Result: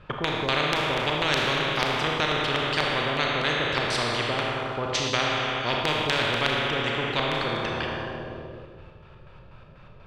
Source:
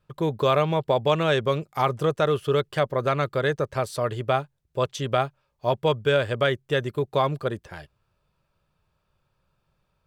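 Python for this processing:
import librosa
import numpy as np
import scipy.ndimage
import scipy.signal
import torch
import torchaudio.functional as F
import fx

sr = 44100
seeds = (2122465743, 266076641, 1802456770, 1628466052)

y = fx.filter_lfo_lowpass(x, sr, shape='square', hz=4.1, low_hz=490.0, high_hz=2700.0, q=1.2)
y = fx.rev_schroeder(y, sr, rt60_s=1.6, comb_ms=26, drr_db=0.5)
y = fx.spectral_comp(y, sr, ratio=4.0)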